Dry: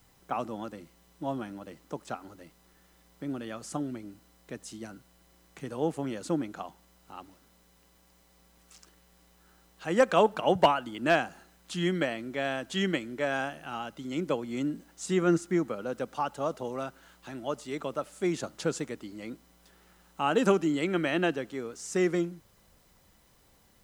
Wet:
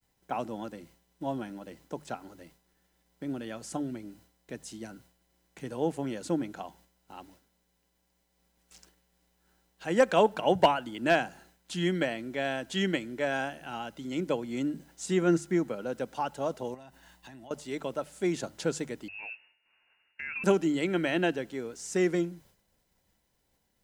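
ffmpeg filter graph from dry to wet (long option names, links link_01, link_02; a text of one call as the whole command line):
ffmpeg -i in.wav -filter_complex "[0:a]asettb=1/sr,asplit=3[link_01][link_02][link_03];[link_01]atrim=end=16.744[link_04];[link_02]atrim=start=16.74:end=17.51,asetpts=PTS-STARTPTS,afade=type=in:duration=0.004:curve=qsin,afade=type=out:start_time=0.766:duration=0.004:curve=qsin,aecho=1:1:1.1:0.5,atrim=end_sample=33957,acompressor=threshold=-44dB:ratio=16:attack=3.2:release=140:knee=1:detection=peak[link_05];[link_03]atrim=start=17.506[link_06];[link_04][link_05]acrossfade=duration=0.004:curve1=hsin:curve2=qsin[link_07];[link_07][link_06]acrossfade=duration=0.004:curve1=qsin:curve2=hsin,asettb=1/sr,asplit=3[link_08][link_09][link_10];[link_08]atrim=end=19.084[link_11];[link_09]atrim=start=19.08:end=20.44,asetpts=PTS-STARTPTS,afade=type=in:duration=0.004:curve=qsin,afade=type=out:start_time=1.356:duration=0.004:curve=qsin,lowpass=frequency=2500:width_type=q:width=0.5098,lowpass=frequency=2500:width_type=q:width=0.6013,lowpass=frequency=2500:width_type=q:width=0.9,lowpass=frequency=2500:width_type=q:width=2.563,afreqshift=-2900,acompressor=threshold=-37dB:ratio=3:attack=3.2:release=140:knee=1:detection=peak[link_12];[link_10]atrim=start=20.436[link_13];[link_11][link_12]acrossfade=duration=0.004:curve1=hsin:curve2=qsin[link_14];[link_14][link_13]acrossfade=duration=0.004:curve1=qsin:curve2=hsin,bandreject=frequency=50:width_type=h:width=6,bandreject=frequency=100:width_type=h:width=6,bandreject=frequency=150:width_type=h:width=6,agate=range=-33dB:threshold=-54dB:ratio=3:detection=peak,bandreject=frequency=1200:width=5.4" out.wav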